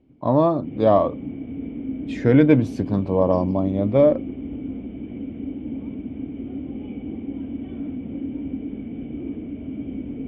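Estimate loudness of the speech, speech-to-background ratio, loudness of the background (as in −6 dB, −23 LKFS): −19.5 LKFS, 12.5 dB, −32.0 LKFS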